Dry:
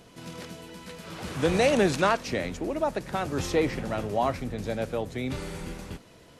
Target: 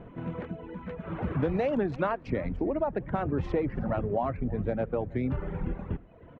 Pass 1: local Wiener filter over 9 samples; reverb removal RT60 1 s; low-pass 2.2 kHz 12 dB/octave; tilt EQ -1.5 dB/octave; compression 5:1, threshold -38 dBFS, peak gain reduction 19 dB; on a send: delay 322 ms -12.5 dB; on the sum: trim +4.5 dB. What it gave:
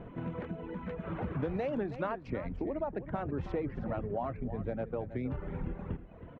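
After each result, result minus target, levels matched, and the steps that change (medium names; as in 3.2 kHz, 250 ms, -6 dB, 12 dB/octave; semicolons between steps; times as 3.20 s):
compression: peak gain reduction +6.5 dB; echo-to-direct +9.5 dB
change: compression 5:1, threshold -30 dBFS, peak gain reduction 12.5 dB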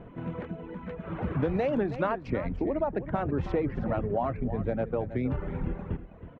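echo-to-direct +9.5 dB
change: delay 322 ms -22 dB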